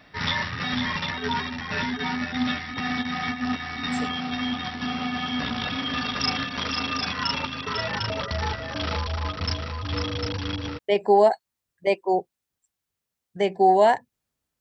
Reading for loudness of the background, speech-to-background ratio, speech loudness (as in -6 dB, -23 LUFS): -27.5 LUFS, 6.0 dB, -21.5 LUFS